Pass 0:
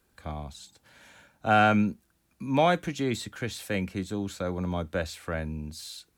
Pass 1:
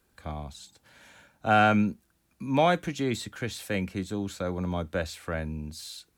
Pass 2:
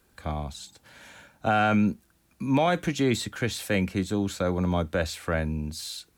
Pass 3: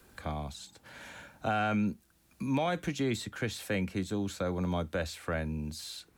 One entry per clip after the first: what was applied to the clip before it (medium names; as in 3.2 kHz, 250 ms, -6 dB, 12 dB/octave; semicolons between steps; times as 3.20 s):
no audible change
peak limiter -19.5 dBFS, peak gain reduction 8 dB; trim +5 dB
three bands compressed up and down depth 40%; trim -6.5 dB